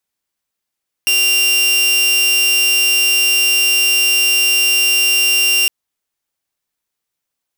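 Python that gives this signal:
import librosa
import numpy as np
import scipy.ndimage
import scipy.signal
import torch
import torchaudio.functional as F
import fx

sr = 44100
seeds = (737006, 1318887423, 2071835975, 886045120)

y = 10.0 ** (-8.5 / 20.0) * (2.0 * np.mod(2780.0 * (np.arange(round(4.61 * sr)) / sr), 1.0) - 1.0)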